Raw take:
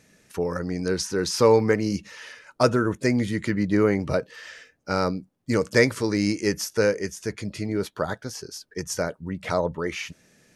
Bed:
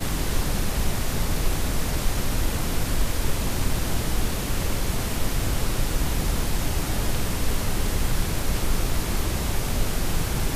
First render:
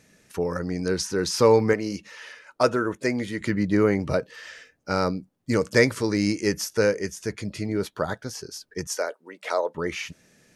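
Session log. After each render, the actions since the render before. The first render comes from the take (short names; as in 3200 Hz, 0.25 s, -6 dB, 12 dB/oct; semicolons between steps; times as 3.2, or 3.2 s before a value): 1.73–3.41 tone controls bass -9 dB, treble -3 dB; 8.87–9.75 HPF 390 Hz 24 dB/oct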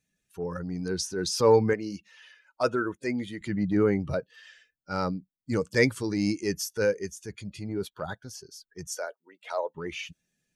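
per-bin expansion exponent 1.5; transient shaper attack -5 dB, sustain +1 dB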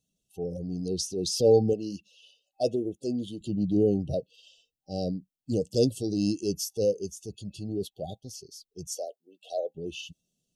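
FFT band-reject 790–2600 Hz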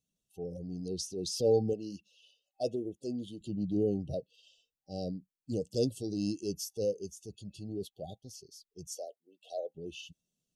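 gain -6.5 dB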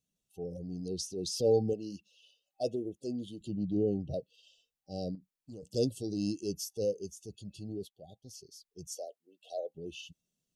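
3.57–4.14 air absorption 89 m; 5.15–5.63 compressor 2.5:1, threshold -49 dBFS; 7.71–8.36 dip -9.5 dB, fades 0.27 s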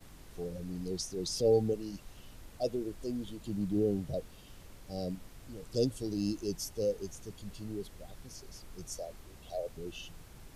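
add bed -27.5 dB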